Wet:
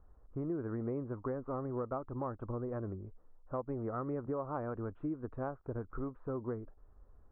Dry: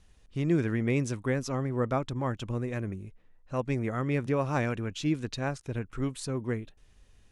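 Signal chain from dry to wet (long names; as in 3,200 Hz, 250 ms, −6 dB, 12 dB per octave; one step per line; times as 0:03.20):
elliptic low-pass filter 1,300 Hz, stop band 80 dB
parametric band 160 Hz −9 dB 1.3 octaves
downward compressor 5 to 1, threshold −36 dBFS, peak gain reduction 10.5 dB
level +1.5 dB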